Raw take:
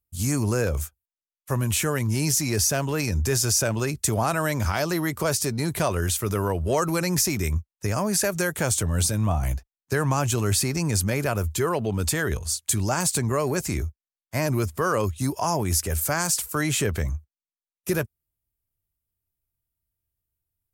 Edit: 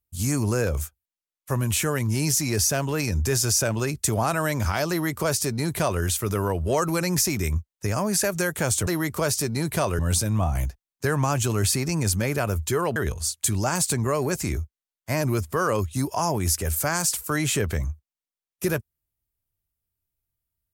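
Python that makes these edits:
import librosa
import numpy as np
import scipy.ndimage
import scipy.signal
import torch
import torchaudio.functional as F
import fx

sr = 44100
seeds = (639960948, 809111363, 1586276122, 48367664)

y = fx.edit(x, sr, fx.duplicate(start_s=4.9, length_s=1.12, to_s=8.87),
    fx.cut(start_s=11.84, length_s=0.37), tone=tone)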